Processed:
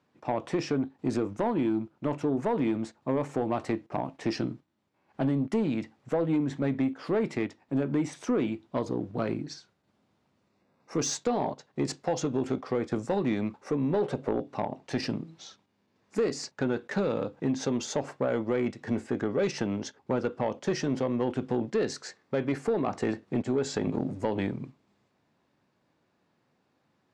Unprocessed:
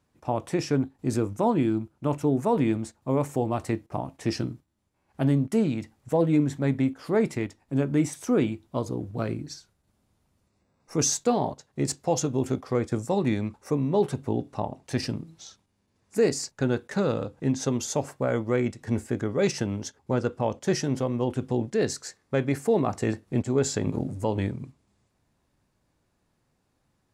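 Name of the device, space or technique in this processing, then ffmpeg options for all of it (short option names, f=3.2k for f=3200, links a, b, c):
AM radio: -filter_complex "[0:a]asplit=3[a][b][c];[a]afade=t=out:st=14.01:d=0.02[d];[b]equalizer=f=560:w=2.1:g=11.5,afade=t=in:st=14.01:d=0.02,afade=t=out:st=14.45:d=0.02[e];[c]afade=t=in:st=14.45:d=0.02[f];[d][e][f]amix=inputs=3:normalize=0,highpass=170,lowpass=4.3k,acompressor=threshold=-24dB:ratio=6,asoftclip=type=tanh:threshold=-21.5dB,volume=3dB"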